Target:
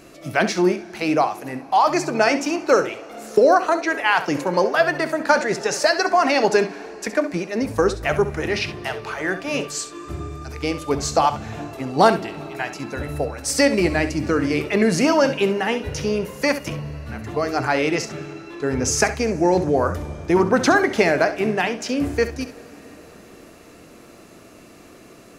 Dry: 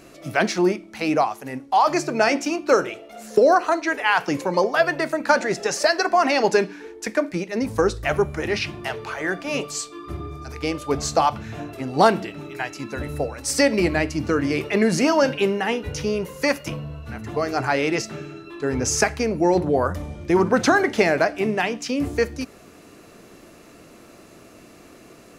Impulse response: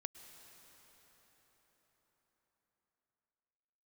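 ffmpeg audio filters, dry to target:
-filter_complex "[0:a]asplit=2[a][b];[1:a]atrim=start_sample=2205,adelay=67[c];[b][c]afir=irnorm=-1:irlink=0,volume=-8.5dB[d];[a][d]amix=inputs=2:normalize=0,volume=1dB"

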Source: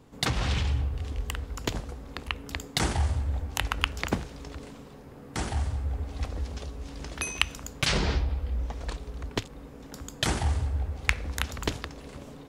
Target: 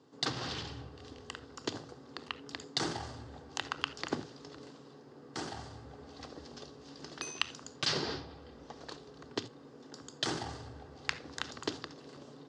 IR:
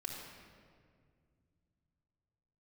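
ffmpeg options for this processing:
-filter_complex "[0:a]highpass=f=150:w=0.5412,highpass=f=150:w=1.3066,equalizer=f=190:t=q:w=4:g=-10,equalizer=f=730:t=q:w=4:g=-3,equalizer=f=2.3k:t=q:w=4:g=-9,equalizer=f=4.7k:t=q:w=4:g=6,lowpass=f=6.9k:w=0.5412,lowpass=f=6.9k:w=1.3066,asplit=2[a][b];[1:a]atrim=start_sample=2205,atrim=end_sample=3969,lowshelf=f=330:g=8.5[c];[b][c]afir=irnorm=-1:irlink=0,volume=-5dB[d];[a][d]amix=inputs=2:normalize=0,volume=-8dB"

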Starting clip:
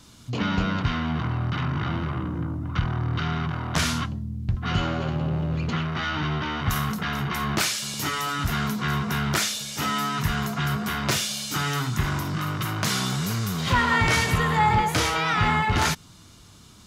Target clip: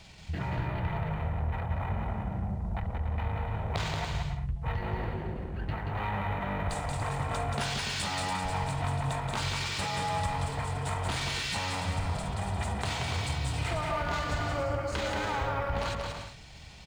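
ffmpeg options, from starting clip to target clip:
-af "bandreject=f=390:w=12,acontrast=51,bandreject=f=172.7:t=h:w=4,bandreject=f=345.4:t=h:w=4,bandreject=f=518.1:t=h:w=4,acompressor=threshold=-24dB:ratio=6,asetrate=28595,aresample=44100,atempo=1.54221,aecho=1:1:180|288|352.8|391.7|415:0.631|0.398|0.251|0.158|0.1,volume=-6.5dB" -ar 44100 -c:a adpcm_ima_wav

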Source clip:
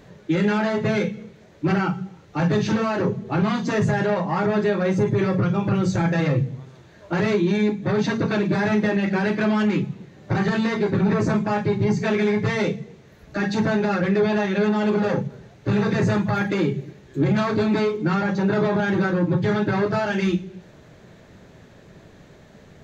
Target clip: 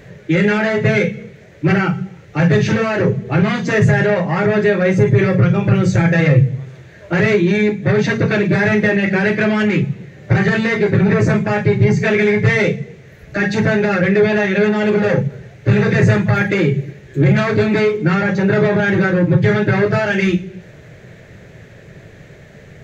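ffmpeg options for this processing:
-af "equalizer=f=125:t=o:w=1:g=6,equalizer=f=250:t=o:w=1:g=-6,equalizer=f=500:t=o:w=1:g=4,equalizer=f=1k:t=o:w=1:g=-8,equalizer=f=2k:t=o:w=1:g=8,equalizer=f=4k:t=o:w=1:g=-4,volume=6.5dB"

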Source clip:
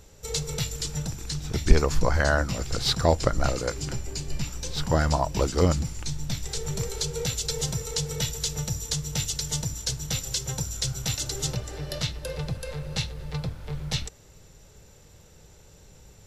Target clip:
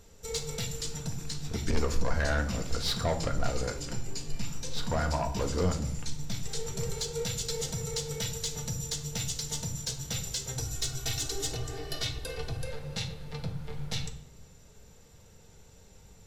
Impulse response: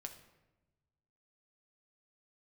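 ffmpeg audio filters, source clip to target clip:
-filter_complex "[0:a]asettb=1/sr,asplit=3[a][b][c];[a]atrim=end=10.584[d];[b]atrim=start=10.58:end=12.63,asetpts=PTS-STARTPTS,afade=t=in:d=0.004:c=qsin,afade=t=out:st=2.046:d=0.004:c=qsin,aecho=1:1:2.7:0.9,atrim=end_sample=90405[e];[c]atrim=start=12.626[f];[d][e]acrossfade=d=0.004:c1=hsin:c2=qsin[g];[g][f]acrossfade=d=0.004:c1=qsin:c2=hsin,asoftclip=type=tanh:threshold=-18.5dB[h];[1:a]atrim=start_sample=2205,asetrate=66150,aresample=44100[i];[h][i]afir=irnorm=-1:irlink=0,volume=4.5dB"

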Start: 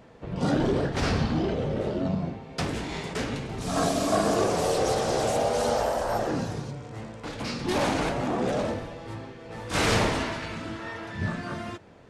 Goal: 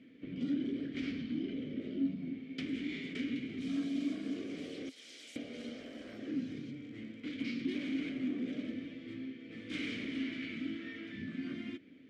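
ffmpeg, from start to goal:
-filter_complex "[0:a]asettb=1/sr,asplit=3[a][b][c];[a]atrim=end=4.894[d];[b]atrim=start=4.89:end=5.36,asetpts=PTS-STARTPTS,afade=t=in:d=0.004:c=qsin,afade=t=out:st=0.466:d=0.004:c=qsin,aderivative[e];[c]atrim=start=5.356[f];[d][e]acrossfade=d=0.004:c1=hsin:c2=qsin[g];[g][f]acrossfade=d=0.004:c1=qsin:c2=hsin,acompressor=threshold=-30dB:ratio=6,asplit=3[h][i][j];[h]bandpass=f=270:t=q:w=8,volume=0dB[k];[i]bandpass=f=2.29k:t=q:w=8,volume=-6dB[l];[j]bandpass=f=3.01k:t=q:w=8,volume=-9dB[m];[k][l][m]amix=inputs=3:normalize=0,volume=6.5dB"

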